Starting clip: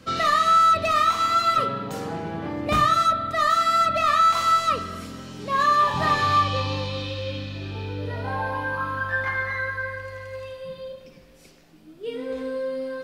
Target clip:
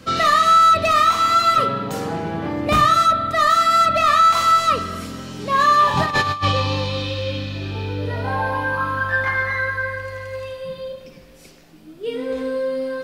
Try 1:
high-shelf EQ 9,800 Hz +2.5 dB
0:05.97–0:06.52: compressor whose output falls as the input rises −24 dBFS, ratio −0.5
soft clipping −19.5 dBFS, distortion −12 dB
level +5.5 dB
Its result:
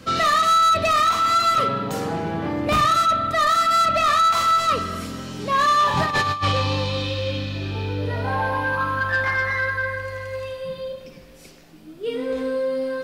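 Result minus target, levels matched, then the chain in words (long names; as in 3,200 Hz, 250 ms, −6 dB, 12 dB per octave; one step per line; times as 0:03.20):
soft clipping: distortion +12 dB
high-shelf EQ 9,800 Hz +2.5 dB
0:05.97–0:06.52: compressor whose output falls as the input rises −24 dBFS, ratio −0.5
soft clipping −11 dBFS, distortion −24 dB
level +5.5 dB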